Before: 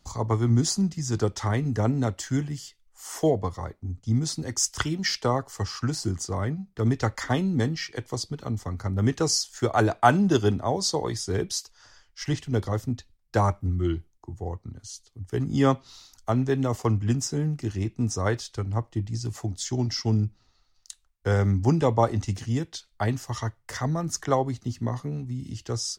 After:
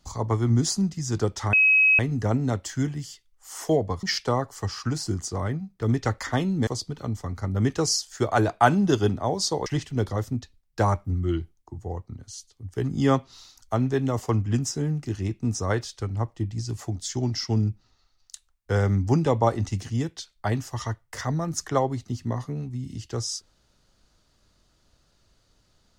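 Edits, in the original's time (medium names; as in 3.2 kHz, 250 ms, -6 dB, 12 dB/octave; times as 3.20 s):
1.53 s: add tone 2.55 kHz -14.5 dBFS 0.46 s
3.57–5.00 s: delete
7.64–8.09 s: delete
11.08–12.22 s: delete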